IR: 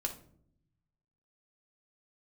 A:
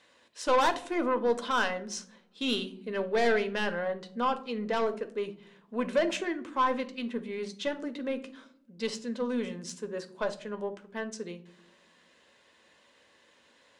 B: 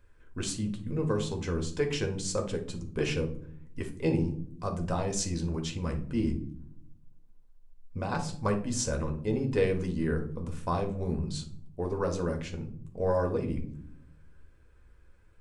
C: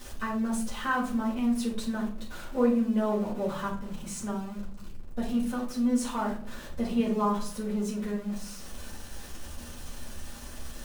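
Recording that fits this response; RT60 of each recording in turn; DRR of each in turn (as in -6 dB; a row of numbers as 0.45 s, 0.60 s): B; no single decay rate, no single decay rate, no single decay rate; 8.0 dB, 2.5 dB, -7.0 dB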